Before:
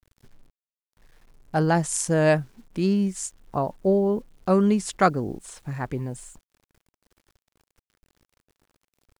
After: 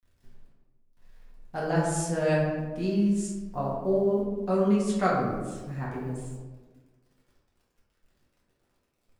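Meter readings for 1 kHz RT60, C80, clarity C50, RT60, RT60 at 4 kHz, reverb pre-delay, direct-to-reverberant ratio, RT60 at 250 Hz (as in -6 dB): 1.2 s, 4.0 dB, 1.0 dB, 1.4 s, 0.70 s, 4 ms, -7.0 dB, 1.8 s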